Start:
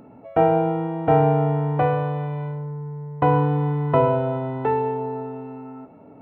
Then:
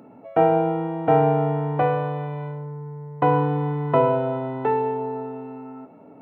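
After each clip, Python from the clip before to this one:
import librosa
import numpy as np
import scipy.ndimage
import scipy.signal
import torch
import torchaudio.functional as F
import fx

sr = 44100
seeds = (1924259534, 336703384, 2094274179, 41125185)

y = scipy.signal.sosfilt(scipy.signal.butter(2, 150.0, 'highpass', fs=sr, output='sos'), x)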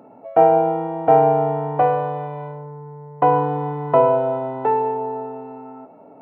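y = fx.peak_eq(x, sr, hz=720.0, db=10.0, octaves=1.6)
y = y * librosa.db_to_amplitude(-4.0)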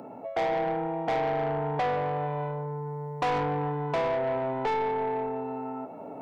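y = fx.rider(x, sr, range_db=4, speed_s=0.5)
y = 10.0 ** (-19.0 / 20.0) * np.tanh(y / 10.0 ** (-19.0 / 20.0))
y = fx.band_squash(y, sr, depth_pct=40)
y = y * librosa.db_to_amplitude(-5.0)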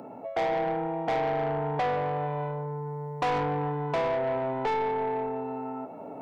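y = x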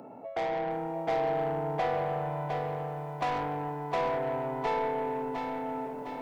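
y = fx.echo_crushed(x, sr, ms=708, feedback_pct=55, bits=10, wet_db=-5.0)
y = y * librosa.db_to_amplitude(-4.0)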